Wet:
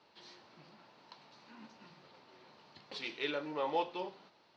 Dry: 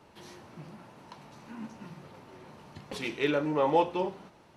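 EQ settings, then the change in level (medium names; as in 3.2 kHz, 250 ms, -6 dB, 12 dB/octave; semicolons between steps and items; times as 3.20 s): high-pass 430 Hz 6 dB/octave; four-pole ladder low-pass 5.1 kHz, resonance 55%; +2.5 dB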